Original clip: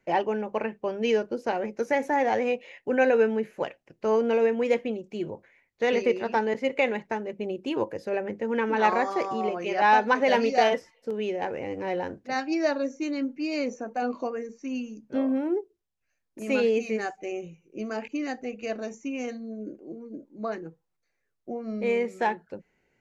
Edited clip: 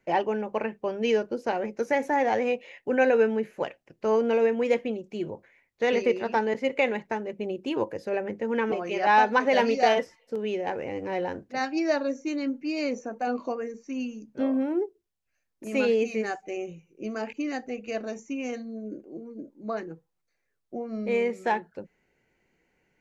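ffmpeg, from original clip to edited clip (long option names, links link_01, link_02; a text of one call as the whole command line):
ffmpeg -i in.wav -filter_complex "[0:a]asplit=2[link_01][link_02];[link_01]atrim=end=8.722[link_03];[link_02]atrim=start=9.468[link_04];[link_03][link_04]acrossfade=duration=0.004:curve1=hsin:curve2=hsin" out.wav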